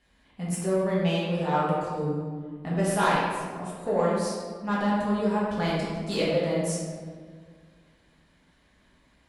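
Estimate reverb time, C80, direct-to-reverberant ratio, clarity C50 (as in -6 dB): 1.8 s, 1.5 dB, -7.5 dB, -1.0 dB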